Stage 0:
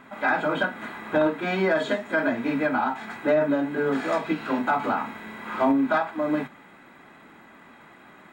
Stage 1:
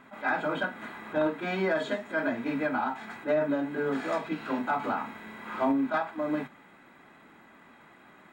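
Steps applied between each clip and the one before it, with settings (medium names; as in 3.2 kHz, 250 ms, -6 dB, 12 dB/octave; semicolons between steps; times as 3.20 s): attacks held to a fixed rise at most 300 dB/s; trim -5 dB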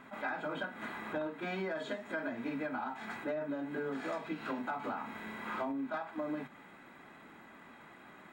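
compression, threshold -35 dBFS, peak gain reduction 12.5 dB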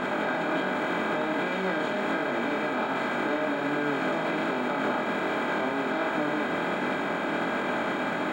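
spectral levelling over time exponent 0.2; peak limiter -24.5 dBFS, peak gain reduction 7.5 dB; chorus 1.3 Hz, delay 20 ms, depth 4.3 ms; trim +8 dB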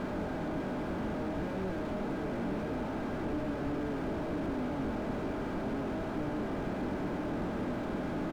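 on a send: delay 853 ms -5.5 dB; on the sum: slew-rate limiter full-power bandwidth 9.9 Hz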